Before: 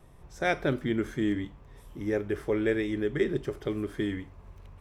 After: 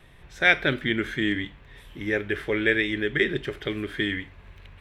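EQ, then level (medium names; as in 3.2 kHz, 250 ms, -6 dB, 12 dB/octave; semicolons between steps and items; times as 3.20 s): high-order bell 2.5 kHz +12.5 dB; +1.0 dB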